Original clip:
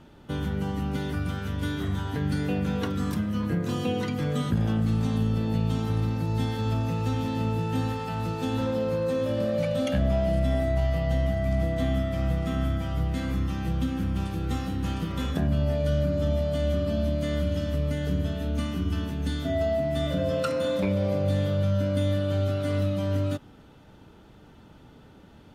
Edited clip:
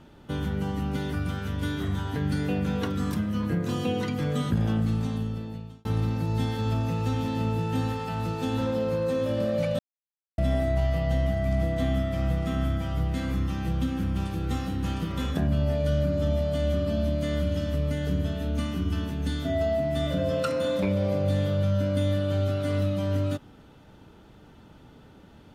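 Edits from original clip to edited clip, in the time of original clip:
4.77–5.85 fade out
9.79–10.38 mute

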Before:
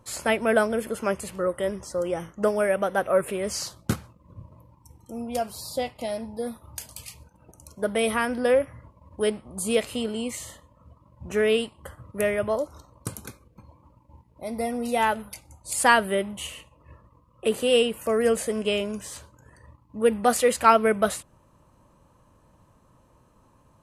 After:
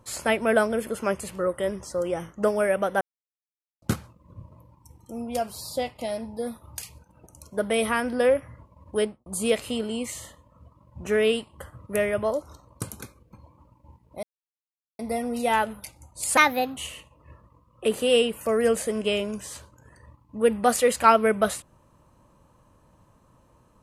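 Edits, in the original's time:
3.01–3.82 mute
6.82–7.07 cut
9.24–9.51 studio fade out
14.48 insert silence 0.76 s
15.86–16.37 speed 129%

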